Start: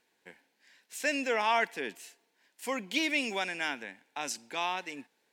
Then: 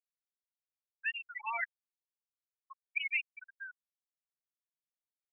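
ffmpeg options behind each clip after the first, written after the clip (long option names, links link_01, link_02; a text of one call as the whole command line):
ffmpeg -i in.wav -af "highpass=1100,afftfilt=real='re*gte(hypot(re,im),0.141)':imag='im*gte(hypot(re,im),0.141)':win_size=1024:overlap=0.75,aemphasis=mode=production:type=riaa,volume=-3.5dB" out.wav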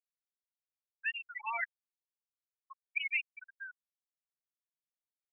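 ffmpeg -i in.wav -af anull out.wav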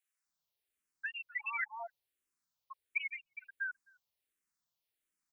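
ffmpeg -i in.wav -filter_complex "[0:a]acrossover=split=680[link_01][link_02];[link_01]adelay=260[link_03];[link_03][link_02]amix=inputs=2:normalize=0,acrossover=split=500[link_04][link_05];[link_05]acompressor=threshold=-43dB:ratio=6[link_06];[link_04][link_06]amix=inputs=2:normalize=0,asplit=2[link_07][link_08];[link_08]afreqshift=-1.4[link_09];[link_07][link_09]amix=inputs=2:normalize=1,volume=10.5dB" out.wav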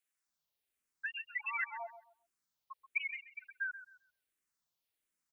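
ffmpeg -i in.wav -filter_complex "[0:a]asplit=2[link_01][link_02];[link_02]adelay=132,lowpass=frequency=2600:poles=1,volume=-12dB,asplit=2[link_03][link_04];[link_04]adelay=132,lowpass=frequency=2600:poles=1,volume=0.24,asplit=2[link_05][link_06];[link_06]adelay=132,lowpass=frequency=2600:poles=1,volume=0.24[link_07];[link_01][link_03][link_05][link_07]amix=inputs=4:normalize=0" out.wav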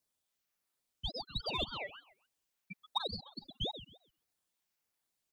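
ffmpeg -i in.wav -filter_complex "[0:a]asplit=2[link_01][link_02];[link_02]asoftclip=type=tanh:threshold=-39.5dB,volume=-9dB[link_03];[link_01][link_03]amix=inputs=2:normalize=0,aeval=exprs='val(0)*sin(2*PI*1800*n/s+1800*0.3/3.5*sin(2*PI*3.5*n/s))':channel_layout=same,volume=2.5dB" out.wav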